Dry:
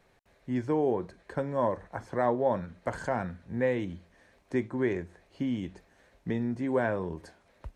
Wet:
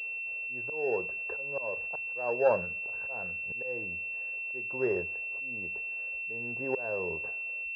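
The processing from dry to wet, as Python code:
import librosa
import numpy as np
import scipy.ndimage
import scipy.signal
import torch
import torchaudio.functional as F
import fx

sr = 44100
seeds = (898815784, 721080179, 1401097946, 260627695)

y = fx.auto_swell(x, sr, attack_ms=489.0)
y = fx.low_shelf_res(y, sr, hz=360.0, db=-6.5, q=3.0)
y = fx.pwm(y, sr, carrier_hz=2700.0)
y = y * 10.0 ** (2.5 / 20.0)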